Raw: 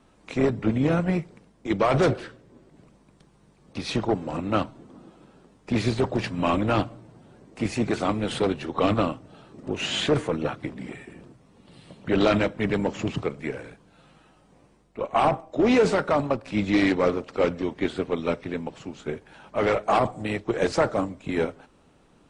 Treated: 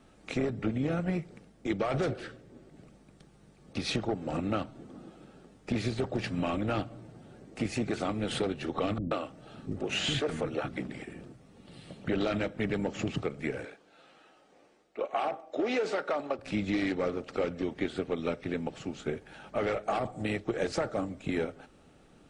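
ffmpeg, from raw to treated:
ffmpeg -i in.wav -filter_complex "[0:a]asettb=1/sr,asplit=3[link_01][link_02][link_03];[link_01]atrim=end=8.984[link_04];[link_02]atrim=start=8.98:end=11.04,asetpts=PTS-STARTPTS,afade=type=in:duration=0.004:curve=qsin,afade=type=out:start_time=2.056:duration=0.004:curve=qsin,acrossover=split=290[link_05][link_06];[link_06]adelay=130[link_07];[link_05][link_07]amix=inputs=2:normalize=0,atrim=end_sample=90846[link_08];[link_03]atrim=start=11.036[link_09];[link_04][link_08]acrossfade=duration=0.004:curve1=hsin:curve2=qsin[link_10];[link_10][link_09]acrossfade=duration=0.004:curve1=qsin:curve2=hsin,asettb=1/sr,asplit=3[link_11][link_12][link_13];[link_11]atrim=end=13.654[link_14];[link_12]atrim=start=13.65:end=16.39,asetpts=PTS-STARTPTS,afade=type=in:duration=0.004:curve=qsin,afade=type=out:start_time=2.736:duration=0.004:curve=qsin,acrossover=split=290 7700:gain=0.0794 1 0.2[link_15][link_16][link_17];[link_15][link_16][link_17]amix=inputs=3:normalize=0[link_18];[link_13]atrim=start=16.386[link_19];[link_14][link_18]acrossfade=duration=0.004:curve1=hsin:curve2=qsin[link_20];[link_20][link_19]acrossfade=duration=0.004:curve1=qsin:curve2=hsin,acompressor=threshold=-28dB:ratio=4,bandreject=frequency=1000:width=5.5" out.wav

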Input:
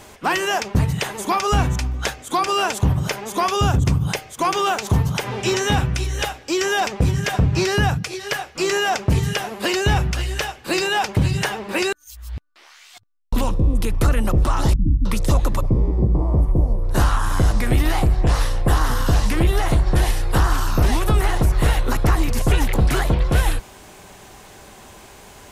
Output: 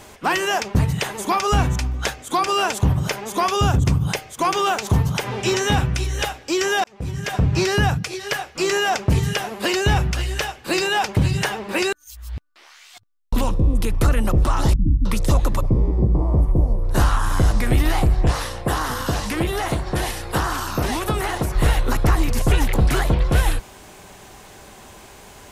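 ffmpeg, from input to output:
ffmpeg -i in.wav -filter_complex "[0:a]asettb=1/sr,asplit=3[link_01][link_02][link_03];[link_01]atrim=end=18.314[link_04];[link_02]atrim=start=18.31:end=21.55,asetpts=PTS-STARTPTS,afade=type=in:duration=0.004:curve=qsin,afade=type=out:start_time=3.236:duration=0.004:curve=qsin,highpass=frequency=170:poles=1[link_05];[link_03]atrim=start=21.546[link_06];[link_04][link_05]acrossfade=duration=0.004:curve1=hsin:curve2=qsin[link_07];[link_07][link_06]acrossfade=duration=0.004:curve1=qsin:curve2=hsin,asplit=2[link_08][link_09];[link_08]atrim=end=6.84,asetpts=PTS-STARTPTS,afade=type=out:start_time=6.836:duration=0.004:curve=hsin[link_10];[link_09]atrim=start=6.84,asetpts=PTS-STARTPTS,afade=type=in:duration=0.67[link_11];[link_10][link_11]concat=n=2:v=0:a=1" out.wav

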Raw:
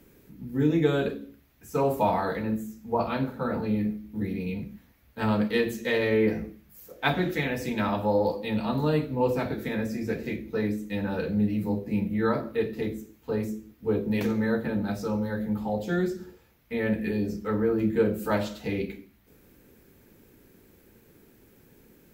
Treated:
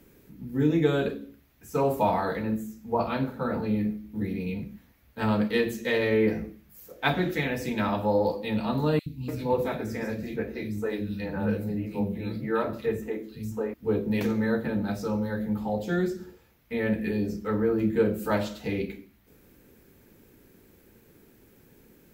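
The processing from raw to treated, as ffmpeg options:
ffmpeg -i in.wav -filter_complex "[0:a]asettb=1/sr,asplit=3[link_01][link_02][link_03];[link_01]atrim=end=8.994[link_04];[link_02]atrim=start=8.99:end=13.74,asetpts=PTS-STARTPTS,afade=type=in:duration=0.004:curve=qsin,afade=type=out:start_time=4.746:duration=0.004:curve=qsin,acrossover=split=230|2700[link_05][link_06][link_07];[link_05]adelay=70[link_08];[link_06]adelay=290[link_09];[link_08][link_09][link_07]amix=inputs=3:normalize=0,atrim=end_sample=209475[link_10];[link_03]atrim=start=13.736[link_11];[link_04][link_10]acrossfade=duration=0.004:curve1=hsin:curve2=qsin[link_12];[link_12][link_11]acrossfade=duration=0.004:curve1=qsin:curve2=hsin" out.wav

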